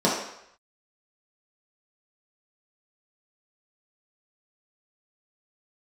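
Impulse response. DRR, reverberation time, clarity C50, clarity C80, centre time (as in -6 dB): -6.5 dB, 0.75 s, 2.5 dB, 6.0 dB, 49 ms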